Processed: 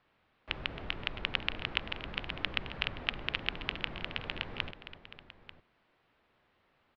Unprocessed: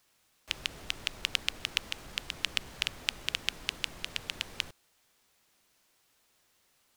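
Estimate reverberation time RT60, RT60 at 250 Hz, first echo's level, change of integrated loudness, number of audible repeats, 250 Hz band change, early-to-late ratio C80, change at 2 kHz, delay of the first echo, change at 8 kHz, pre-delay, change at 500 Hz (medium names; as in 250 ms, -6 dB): no reverb, no reverb, -13.5 dB, -2.0 dB, 3, +5.5 dB, no reverb, +0.5 dB, 269 ms, under -25 dB, no reverb, +5.0 dB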